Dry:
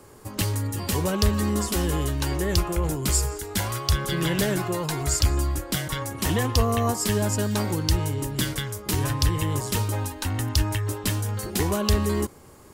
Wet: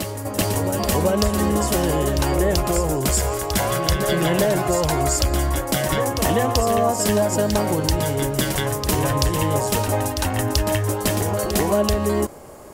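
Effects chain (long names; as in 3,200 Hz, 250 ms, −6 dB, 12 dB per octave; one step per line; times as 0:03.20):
graphic EQ with 15 bands 100 Hz −5 dB, 630 Hz +11 dB, 4,000 Hz −3 dB
downward compressor, threshold −22 dBFS, peak gain reduction 8 dB
backwards echo 385 ms −7 dB
level +6 dB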